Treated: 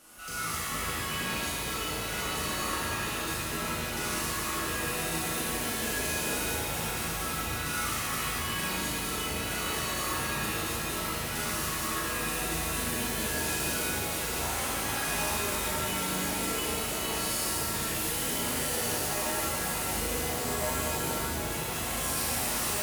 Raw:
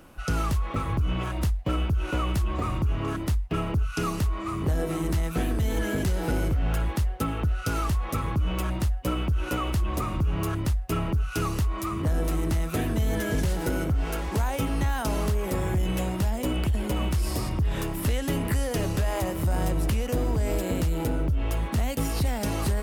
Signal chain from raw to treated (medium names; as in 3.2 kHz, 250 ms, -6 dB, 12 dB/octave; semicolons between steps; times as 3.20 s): CVSD coder 64 kbps; RIAA curve recording; saturation -29 dBFS, distortion -10 dB; on a send: flutter echo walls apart 6.4 m, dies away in 0.45 s; on the sum: pitch-shifted reverb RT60 3.1 s, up +7 st, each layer -2 dB, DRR -7 dB; trim -8.5 dB